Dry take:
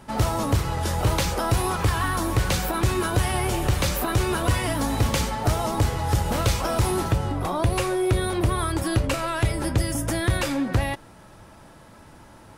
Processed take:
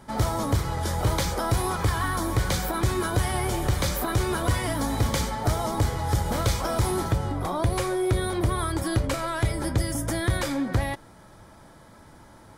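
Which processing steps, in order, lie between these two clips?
band-stop 2.7 kHz, Q 5.8; trim -2 dB

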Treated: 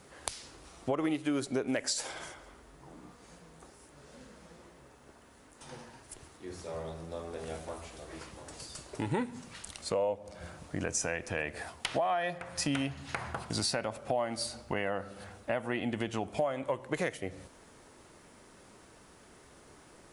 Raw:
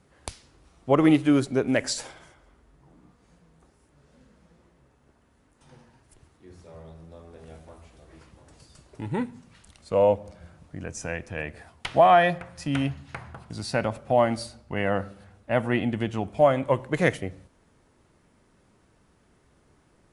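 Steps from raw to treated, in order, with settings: tone controls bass -8 dB, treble +4 dB; compression 10:1, threshold -36 dBFS, peak gain reduction 22.5 dB; in parallel at -2 dB: peak limiter -30 dBFS, peak gain reduction 11 dB; on the sum: trim +3 dB

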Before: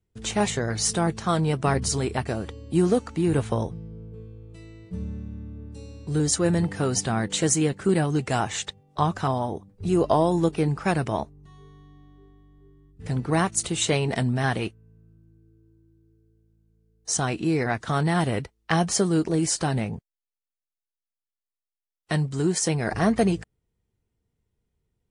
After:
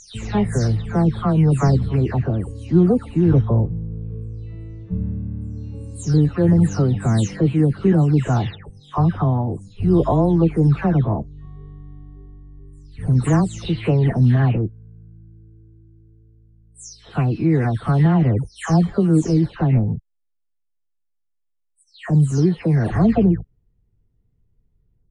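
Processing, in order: delay that grows with frequency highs early, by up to 328 ms; RIAA curve playback

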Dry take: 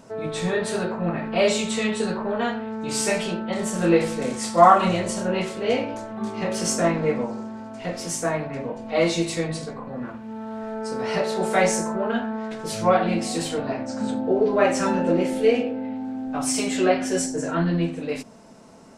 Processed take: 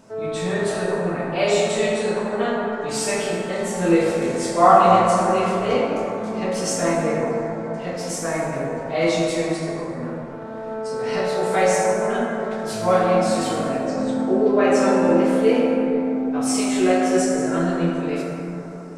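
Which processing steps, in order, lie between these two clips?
plate-style reverb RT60 3.5 s, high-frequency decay 0.35×, DRR -3 dB; trim -2.5 dB

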